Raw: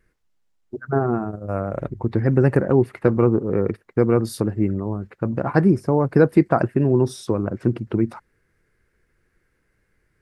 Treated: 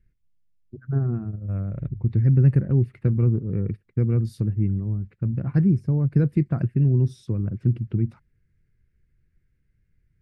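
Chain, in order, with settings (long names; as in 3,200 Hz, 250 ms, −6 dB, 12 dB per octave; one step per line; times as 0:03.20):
drawn EQ curve 140 Hz 0 dB, 290 Hz −13 dB, 870 Hz −27 dB, 2,400 Hz −14 dB, 11,000 Hz −22 dB
level +3.5 dB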